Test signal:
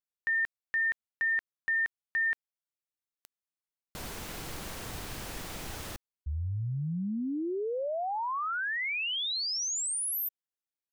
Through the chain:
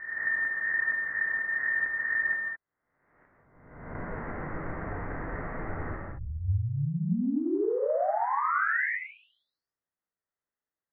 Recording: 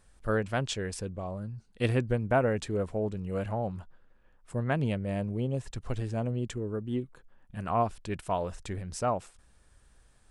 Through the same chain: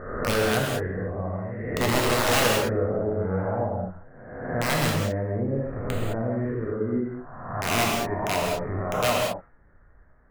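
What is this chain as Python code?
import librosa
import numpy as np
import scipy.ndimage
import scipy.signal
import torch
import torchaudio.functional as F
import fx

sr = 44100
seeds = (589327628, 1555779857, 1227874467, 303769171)

y = fx.spec_swells(x, sr, rise_s=1.14)
y = scipy.signal.sosfilt(scipy.signal.cheby1(6, 1.0, 2000.0, 'lowpass', fs=sr, output='sos'), y)
y = (np.mod(10.0 ** (18.5 / 20.0) * y + 1.0, 2.0) - 1.0) / 10.0 ** (18.5 / 20.0)
y = fx.rev_gated(y, sr, seeds[0], gate_ms=240, shape='flat', drr_db=-2.5)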